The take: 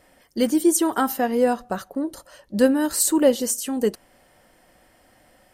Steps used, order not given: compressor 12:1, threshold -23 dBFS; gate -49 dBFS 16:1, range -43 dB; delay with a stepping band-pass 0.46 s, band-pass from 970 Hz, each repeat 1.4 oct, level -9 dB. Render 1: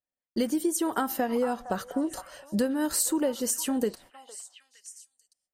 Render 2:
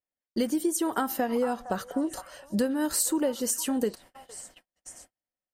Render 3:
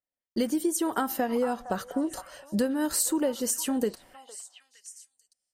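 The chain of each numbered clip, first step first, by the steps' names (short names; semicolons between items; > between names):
compressor > gate > delay with a stepping band-pass; compressor > delay with a stepping band-pass > gate; gate > compressor > delay with a stepping band-pass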